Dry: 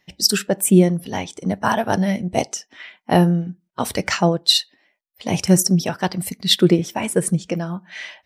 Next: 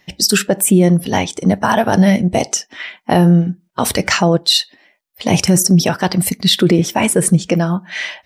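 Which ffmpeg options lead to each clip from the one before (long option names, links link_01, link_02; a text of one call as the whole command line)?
ffmpeg -i in.wav -af "alimiter=level_in=12.5dB:limit=-1dB:release=50:level=0:latency=1,volume=-2.5dB" out.wav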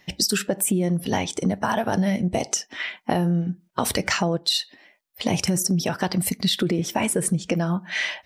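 ffmpeg -i in.wav -af "acompressor=threshold=-18dB:ratio=6,volume=-1.5dB" out.wav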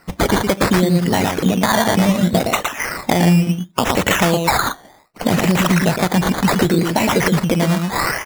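ffmpeg -i in.wav -filter_complex "[0:a]asplit=2[link_01][link_02];[link_02]acrusher=bits=3:mode=log:mix=0:aa=0.000001,volume=-7dB[link_03];[link_01][link_03]amix=inputs=2:normalize=0,aecho=1:1:115:0.631,acrusher=samples=13:mix=1:aa=0.000001:lfo=1:lforange=7.8:lforate=0.68,volume=3dB" out.wav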